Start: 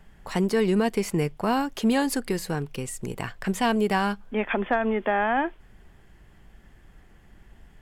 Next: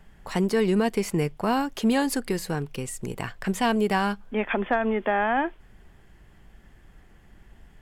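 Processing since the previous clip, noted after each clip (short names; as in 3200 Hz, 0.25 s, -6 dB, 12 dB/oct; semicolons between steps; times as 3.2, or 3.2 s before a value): nothing audible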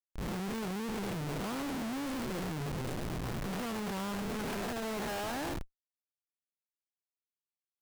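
time blur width 0.239 s; Schmitt trigger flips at -38.5 dBFS; gain -5.5 dB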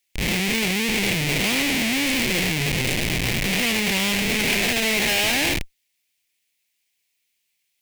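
resonant high shelf 1700 Hz +9 dB, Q 3; in parallel at 0 dB: limiter -27 dBFS, peak gain reduction 8.5 dB; on the sum: gain +7.5 dB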